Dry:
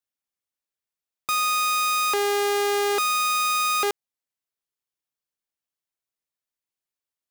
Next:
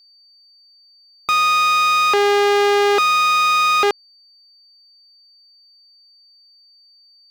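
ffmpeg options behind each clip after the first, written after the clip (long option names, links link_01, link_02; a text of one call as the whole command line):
ffmpeg -i in.wav -filter_complex "[0:a]acrossover=split=5300[link_01][link_02];[link_02]acompressor=threshold=-45dB:ratio=4:attack=1:release=60[link_03];[link_01][link_03]amix=inputs=2:normalize=0,aeval=exprs='val(0)+0.00141*sin(2*PI*4600*n/s)':channel_layout=same,volume=8dB" out.wav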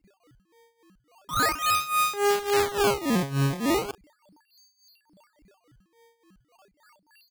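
ffmpeg -i in.wav -filter_complex "[0:a]tremolo=f=3.5:d=0.85,acrossover=split=3100[link_01][link_02];[link_02]adelay=40[link_03];[link_01][link_03]amix=inputs=2:normalize=0,acrusher=samples=18:mix=1:aa=0.000001:lfo=1:lforange=28.8:lforate=0.37,volume=-5dB" out.wav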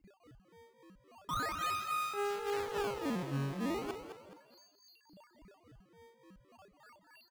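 ffmpeg -i in.wav -filter_complex "[0:a]highshelf=frequency=4400:gain=-8,acompressor=threshold=-34dB:ratio=10,asplit=2[link_01][link_02];[link_02]asplit=4[link_03][link_04][link_05][link_06];[link_03]adelay=211,afreqshift=51,volume=-9dB[link_07];[link_04]adelay=422,afreqshift=102,volume=-17.9dB[link_08];[link_05]adelay=633,afreqshift=153,volume=-26.7dB[link_09];[link_06]adelay=844,afreqshift=204,volume=-35.6dB[link_10];[link_07][link_08][link_09][link_10]amix=inputs=4:normalize=0[link_11];[link_01][link_11]amix=inputs=2:normalize=0" out.wav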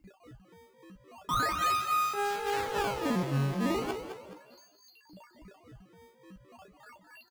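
ffmpeg -i in.wav -filter_complex "[0:a]asplit=2[link_01][link_02];[link_02]adelay=16,volume=-7dB[link_03];[link_01][link_03]amix=inputs=2:normalize=0,volume=6dB" out.wav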